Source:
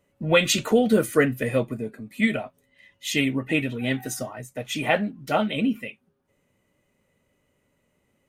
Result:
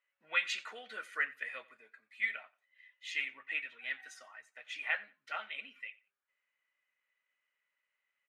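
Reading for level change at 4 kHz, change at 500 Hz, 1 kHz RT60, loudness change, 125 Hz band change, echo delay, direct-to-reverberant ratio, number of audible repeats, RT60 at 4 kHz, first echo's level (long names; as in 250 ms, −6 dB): −14.0 dB, −30.0 dB, no reverb audible, −13.5 dB, below −40 dB, 90 ms, no reverb audible, 1, no reverb audible, −21.5 dB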